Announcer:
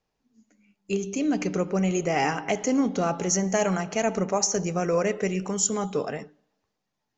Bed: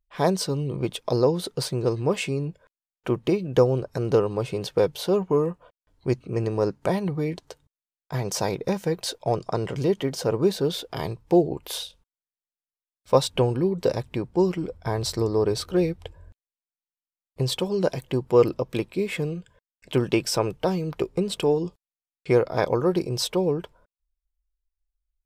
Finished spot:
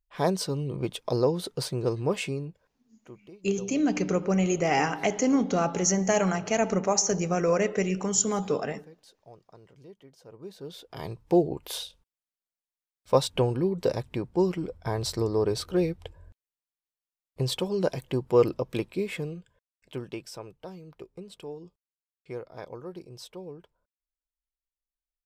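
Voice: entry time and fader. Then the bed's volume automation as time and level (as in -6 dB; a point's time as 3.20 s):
2.55 s, 0.0 dB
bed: 2.28 s -3.5 dB
3.28 s -26.5 dB
10.24 s -26.5 dB
11.21 s -3 dB
18.94 s -3 dB
20.44 s -18 dB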